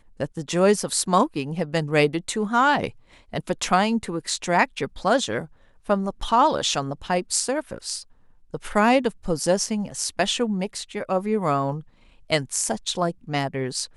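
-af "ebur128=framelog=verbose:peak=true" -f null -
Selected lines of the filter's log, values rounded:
Integrated loudness:
  I:         -23.5 LUFS
  Threshold: -33.9 LUFS
Loudness range:
  LRA:         2.9 LU
  Threshold: -43.9 LUFS
  LRA low:   -25.4 LUFS
  LRA high:  -22.5 LUFS
True peak:
  Peak:       -4.7 dBFS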